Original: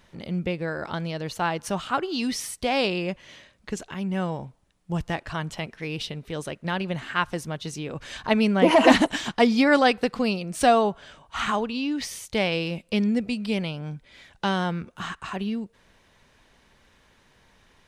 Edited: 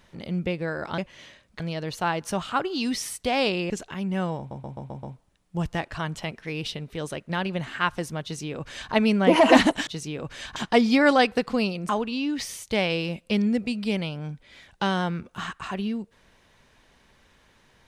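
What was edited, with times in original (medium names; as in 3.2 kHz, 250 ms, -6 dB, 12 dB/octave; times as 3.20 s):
3.08–3.70 s: move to 0.98 s
4.38 s: stutter 0.13 s, 6 plays
7.58–8.27 s: copy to 9.22 s
10.55–11.51 s: delete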